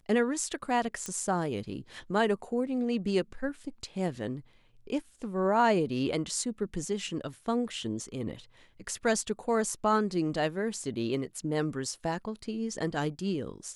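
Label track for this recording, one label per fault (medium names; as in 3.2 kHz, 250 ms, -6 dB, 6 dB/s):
1.060000	1.060000	pop -20 dBFS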